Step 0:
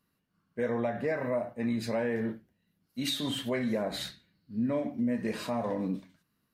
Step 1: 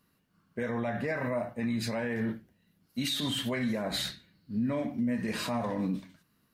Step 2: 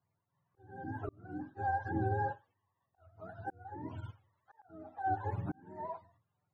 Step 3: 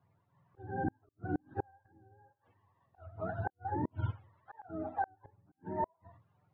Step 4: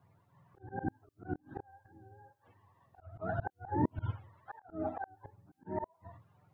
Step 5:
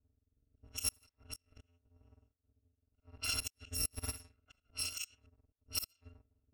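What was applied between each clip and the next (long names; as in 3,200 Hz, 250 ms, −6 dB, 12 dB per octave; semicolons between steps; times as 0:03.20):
dynamic equaliser 460 Hz, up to −7 dB, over −43 dBFS, Q 0.77; brickwall limiter −29 dBFS, peak gain reduction 8.5 dB; level +6 dB
frequency axis turned over on the octave scale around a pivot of 430 Hz; volume swells 570 ms; expander for the loud parts 1.5 to 1, over −48 dBFS
gate with flip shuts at −33 dBFS, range −40 dB; high-frequency loss of the air 350 metres; level +11.5 dB
volume swells 160 ms; level +5.5 dB
samples in bit-reversed order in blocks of 256 samples; rotating-speaker cabinet horn 0.85 Hz, later 5 Hz, at 0:03.88; low-pass that shuts in the quiet parts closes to 390 Hz, open at −38 dBFS; level +1.5 dB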